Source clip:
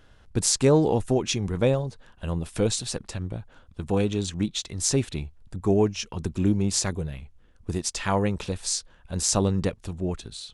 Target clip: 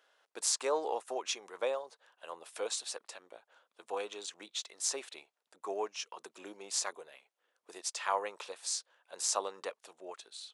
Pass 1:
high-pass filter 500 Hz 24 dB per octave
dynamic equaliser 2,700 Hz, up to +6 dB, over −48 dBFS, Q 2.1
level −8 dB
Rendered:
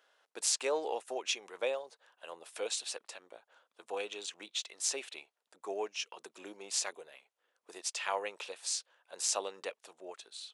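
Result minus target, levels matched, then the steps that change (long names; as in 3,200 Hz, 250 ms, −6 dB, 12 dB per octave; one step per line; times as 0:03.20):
1,000 Hz band −3.5 dB
change: dynamic equaliser 1,100 Hz, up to +6 dB, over −48 dBFS, Q 2.1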